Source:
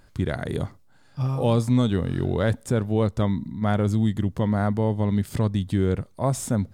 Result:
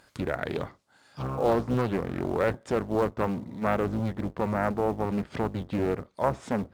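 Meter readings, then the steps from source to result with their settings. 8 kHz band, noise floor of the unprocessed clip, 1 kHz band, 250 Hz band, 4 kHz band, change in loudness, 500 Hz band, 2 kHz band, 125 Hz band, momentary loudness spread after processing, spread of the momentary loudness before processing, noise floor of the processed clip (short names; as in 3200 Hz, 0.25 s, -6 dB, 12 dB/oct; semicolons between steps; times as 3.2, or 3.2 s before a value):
under -10 dB, -55 dBFS, +1.5 dB, -6.0 dB, -7.5 dB, -4.5 dB, -0.5 dB, 0.0 dB, -10.5 dB, 6 LU, 7 LU, -61 dBFS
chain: octaver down 1 oct, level -4 dB; treble ducked by the level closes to 1600 Hz, closed at -20 dBFS; HPF 570 Hz 6 dB/oct; in parallel at -7 dB: short-mantissa float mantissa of 2-bit; on the sum: Doppler distortion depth 0.58 ms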